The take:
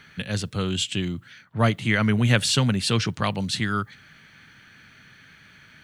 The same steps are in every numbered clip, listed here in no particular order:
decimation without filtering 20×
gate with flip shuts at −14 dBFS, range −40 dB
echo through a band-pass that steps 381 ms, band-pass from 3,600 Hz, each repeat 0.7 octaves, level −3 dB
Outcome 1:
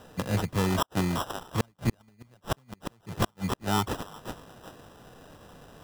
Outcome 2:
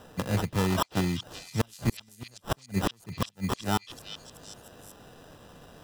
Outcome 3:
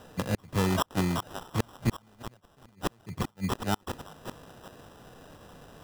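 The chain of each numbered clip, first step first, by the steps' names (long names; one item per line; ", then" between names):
echo through a band-pass that steps, then decimation without filtering, then gate with flip
decimation without filtering, then gate with flip, then echo through a band-pass that steps
gate with flip, then echo through a band-pass that steps, then decimation without filtering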